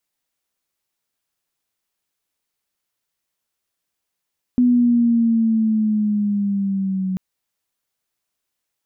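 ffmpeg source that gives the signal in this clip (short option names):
-f lavfi -i "aevalsrc='pow(10,(-11-8.5*t/2.59)/20)*sin(2*PI*248*2.59/(-5*log(2)/12)*(exp(-5*log(2)/12*t/2.59)-1))':d=2.59:s=44100"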